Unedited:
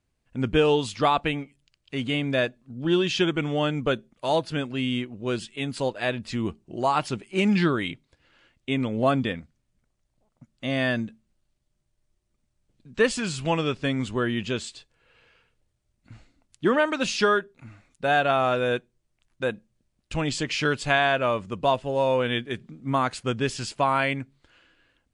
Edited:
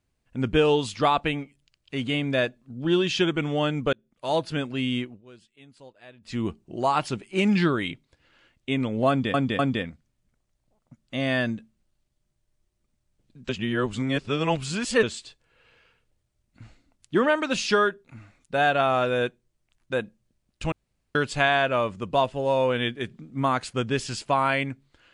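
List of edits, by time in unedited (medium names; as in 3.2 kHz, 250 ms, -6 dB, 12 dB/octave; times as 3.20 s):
3.93–4.41 s: fade in linear
5.05–6.38 s: dip -21.5 dB, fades 0.17 s
9.09–9.34 s: loop, 3 plays
12.99–14.53 s: reverse
20.22–20.65 s: room tone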